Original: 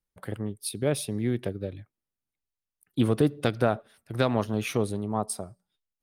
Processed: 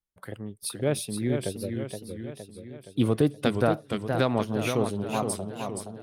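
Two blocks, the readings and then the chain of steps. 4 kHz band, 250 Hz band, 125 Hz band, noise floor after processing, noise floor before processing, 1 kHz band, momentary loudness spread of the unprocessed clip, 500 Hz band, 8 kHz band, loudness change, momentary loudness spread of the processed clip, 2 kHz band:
+1.5 dB, +1.0 dB, 0.0 dB, -56 dBFS, under -85 dBFS, +1.5 dB, 13 LU, +1.0 dB, +1.0 dB, +0.5 dB, 15 LU, +1.0 dB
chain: spectral noise reduction 6 dB; modulated delay 469 ms, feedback 55%, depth 149 cents, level -6 dB

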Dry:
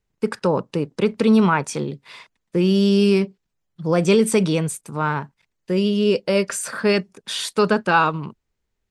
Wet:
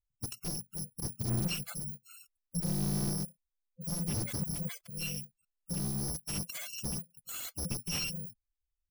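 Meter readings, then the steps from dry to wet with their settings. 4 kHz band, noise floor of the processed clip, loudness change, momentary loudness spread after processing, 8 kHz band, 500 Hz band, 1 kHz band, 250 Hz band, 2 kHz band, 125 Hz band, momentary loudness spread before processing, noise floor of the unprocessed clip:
-12.0 dB, under -85 dBFS, -15.5 dB, 10 LU, -5.5 dB, -29.0 dB, -27.5 dB, -19.5 dB, -21.0 dB, -11.0 dB, 12 LU, -77 dBFS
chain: bit-reversed sample order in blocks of 128 samples; spectral gate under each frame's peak -10 dB strong; slew-rate limiter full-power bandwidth 390 Hz; trim -9 dB

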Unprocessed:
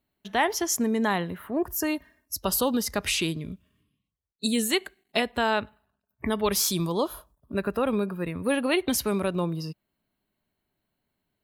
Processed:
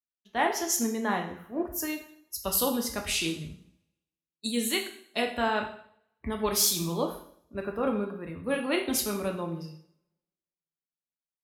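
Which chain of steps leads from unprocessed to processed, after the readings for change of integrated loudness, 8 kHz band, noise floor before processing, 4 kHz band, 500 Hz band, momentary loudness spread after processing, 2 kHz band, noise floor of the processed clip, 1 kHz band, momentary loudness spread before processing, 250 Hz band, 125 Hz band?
-2.5 dB, 0.0 dB, -82 dBFS, -2.0 dB, -3.5 dB, 13 LU, -3.0 dB, under -85 dBFS, -2.5 dB, 10 LU, -4.5 dB, -5.5 dB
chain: two-slope reverb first 0.77 s, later 2.7 s, from -26 dB, DRR 2 dB; three bands expanded up and down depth 70%; trim -5.5 dB

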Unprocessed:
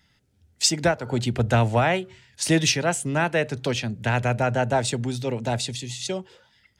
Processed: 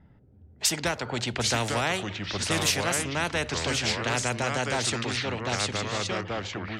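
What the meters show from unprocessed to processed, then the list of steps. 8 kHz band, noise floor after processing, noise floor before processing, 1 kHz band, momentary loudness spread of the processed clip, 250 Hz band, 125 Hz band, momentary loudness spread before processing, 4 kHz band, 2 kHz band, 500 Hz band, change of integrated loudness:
-1.0 dB, -56 dBFS, -65 dBFS, -3.5 dB, 5 LU, -6.0 dB, -7.5 dB, 9 LU, +0.5 dB, -1.0 dB, -6.0 dB, -3.5 dB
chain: ever faster or slower copies 689 ms, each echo -3 st, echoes 2, each echo -6 dB; level-controlled noise filter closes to 710 Hz, open at -16.5 dBFS; spectrum-flattening compressor 2:1; trim -2.5 dB

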